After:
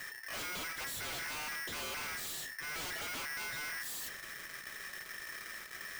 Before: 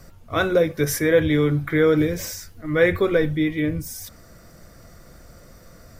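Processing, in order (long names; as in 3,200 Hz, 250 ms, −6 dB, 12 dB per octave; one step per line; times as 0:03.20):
wrap-around overflow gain 14.5 dB
tube saturation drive 44 dB, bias 0.45
ring modulator with a square carrier 1,800 Hz
level +4 dB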